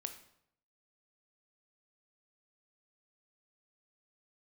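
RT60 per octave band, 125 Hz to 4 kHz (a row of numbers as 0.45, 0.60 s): 0.85, 0.75, 0.75, 0.70, 0.60, 0.55 s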